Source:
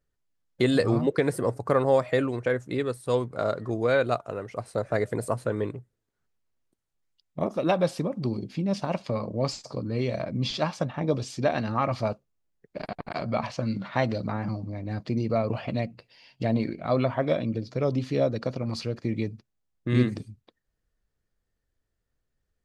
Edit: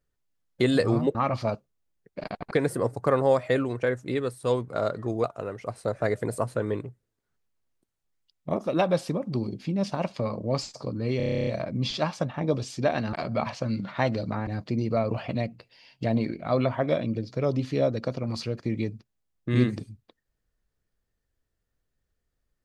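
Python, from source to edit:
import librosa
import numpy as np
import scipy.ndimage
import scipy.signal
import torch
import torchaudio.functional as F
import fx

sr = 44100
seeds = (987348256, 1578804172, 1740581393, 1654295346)

y = fx.edit(x, sr, fx.cut(start_s=3.87, length_s=0.27),
    fx.stutter(start_s=10.07, slice_s=0.03, count=11),
    fx.move(start_s=11.73, length_s=1.37, to_s=1.15),
    fx.cut(start_s=14.44, length_s=0.42), tone=tone)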